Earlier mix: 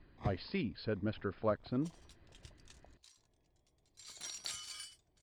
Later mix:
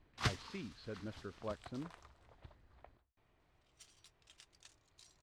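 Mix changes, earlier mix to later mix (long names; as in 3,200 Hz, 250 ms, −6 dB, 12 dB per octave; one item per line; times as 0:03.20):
speech −9.5 dB
first sound: remove moving average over 31 samples
second sound: entry +1.95 s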